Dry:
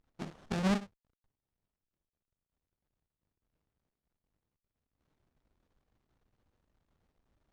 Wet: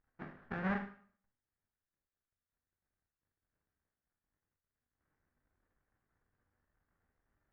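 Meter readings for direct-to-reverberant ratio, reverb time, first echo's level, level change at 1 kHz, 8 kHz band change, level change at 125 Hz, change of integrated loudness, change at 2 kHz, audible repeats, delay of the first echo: 4.0 dB, 0.50 s, none, -2.5 dB, under -20 dB, -7.0 dB, -6.0 dB, +1.5 dB, none, none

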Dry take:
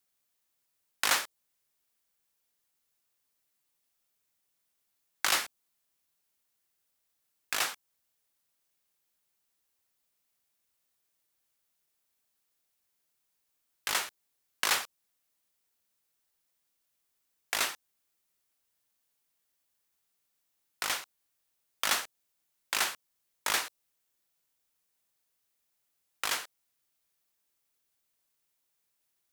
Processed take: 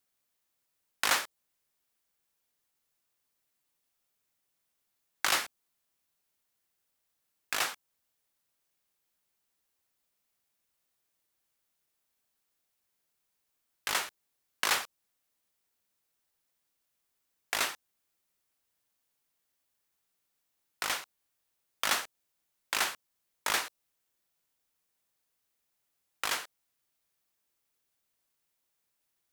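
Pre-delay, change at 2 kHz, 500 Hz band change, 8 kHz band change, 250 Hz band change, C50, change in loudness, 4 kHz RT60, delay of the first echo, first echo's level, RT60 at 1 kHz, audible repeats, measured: none, 0.0 dB, +1.0 dB, -1.5 dB, +1.0 dB, none, -0.5 dB, none, none, none, none, none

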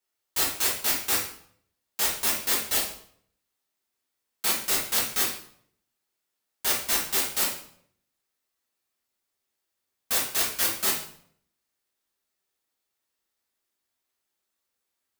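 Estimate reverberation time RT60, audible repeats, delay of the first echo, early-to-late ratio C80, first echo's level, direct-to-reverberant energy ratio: 0.60 s, none, none, 9.0 dB, none, -7.0 dB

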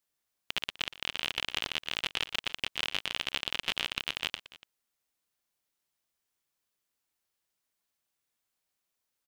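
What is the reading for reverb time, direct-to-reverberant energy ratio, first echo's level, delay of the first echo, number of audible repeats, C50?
none, none, -16.5 dB, 0.119 s, 2, none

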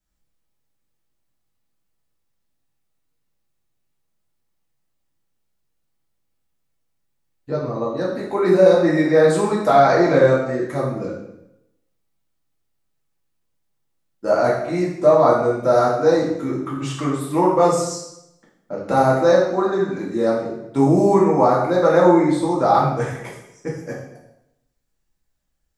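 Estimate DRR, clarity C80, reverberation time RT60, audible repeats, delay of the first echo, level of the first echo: -5.5 dB, 6.5 dB, 0.85 s, none, none, none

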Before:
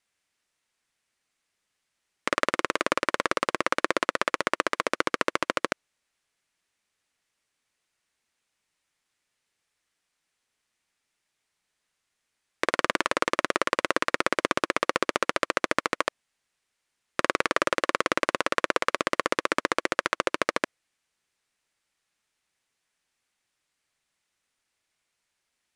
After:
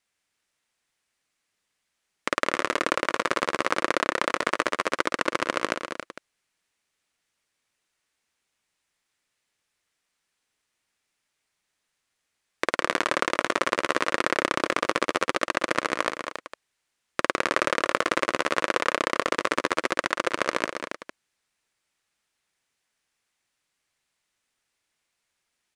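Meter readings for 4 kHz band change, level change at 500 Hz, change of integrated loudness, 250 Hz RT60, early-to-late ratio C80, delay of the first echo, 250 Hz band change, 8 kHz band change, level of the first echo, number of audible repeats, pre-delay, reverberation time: +1.0 dB, +1.0 dB, +1.0 dB, none, none, 0.188 s, +1.0 dB, +1.0 dB, -11.5 dB, 3, none, none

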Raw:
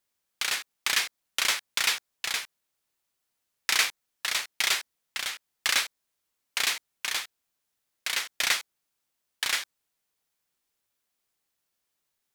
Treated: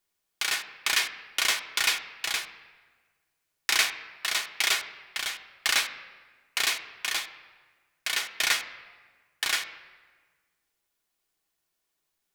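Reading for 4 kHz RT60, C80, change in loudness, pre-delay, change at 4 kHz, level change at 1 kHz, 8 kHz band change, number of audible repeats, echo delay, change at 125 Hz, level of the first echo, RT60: 1.1 s, 13.5 dB, +0.5 dB, 3 ms, +0.5 dB, +1.0 dB, 0.0 dB, none, none, n/a, none, 1.4 s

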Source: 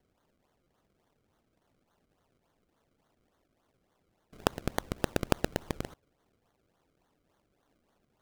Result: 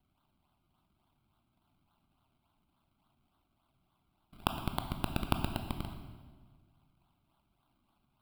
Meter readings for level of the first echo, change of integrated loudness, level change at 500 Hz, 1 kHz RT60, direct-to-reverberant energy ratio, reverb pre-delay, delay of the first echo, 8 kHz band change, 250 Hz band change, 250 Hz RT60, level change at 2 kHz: none, -2.5 dB, -9.5 dB, 1.4 s, 6.0 dB, 16 ms, none, -7.5 dB, -2.5 dB, 1.9 s, -5.0 dB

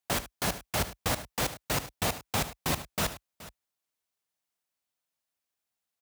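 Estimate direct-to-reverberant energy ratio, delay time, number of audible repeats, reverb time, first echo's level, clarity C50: none, 74 ms, 2, none, -14.5 dB, none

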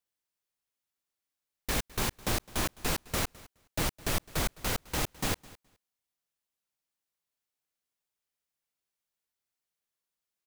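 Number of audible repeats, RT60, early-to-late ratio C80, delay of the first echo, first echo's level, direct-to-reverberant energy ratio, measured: 1, none, none, 0.21 s, -21.5 dB, none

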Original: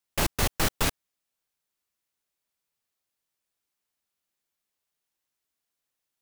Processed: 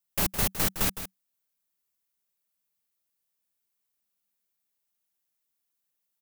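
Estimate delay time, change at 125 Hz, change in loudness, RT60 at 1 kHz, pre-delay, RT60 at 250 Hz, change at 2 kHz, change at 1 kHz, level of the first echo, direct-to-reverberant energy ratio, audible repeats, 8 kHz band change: 0.161 s, -3.0 dB, +1.0 dB, none, none, none, -4.0 dB, -4.0 dB, -11.0 dB, none, 1, +0.5 dB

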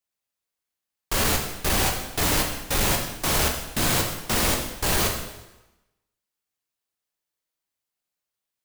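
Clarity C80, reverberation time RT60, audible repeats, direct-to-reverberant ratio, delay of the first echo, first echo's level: 7.5 dB, 1.0 s, none, 1.0 dB, none, none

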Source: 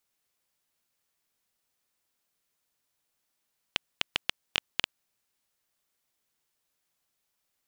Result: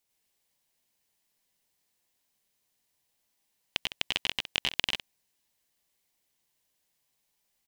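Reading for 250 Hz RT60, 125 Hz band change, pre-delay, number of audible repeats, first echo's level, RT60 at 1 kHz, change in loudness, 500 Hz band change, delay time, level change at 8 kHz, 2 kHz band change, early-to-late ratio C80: none, +3.0 dB, none, 2, -3.0 dB, none, +2.5 dB, +2.0 dB, 92 ms, +3.0 dB, +2.0 dB, none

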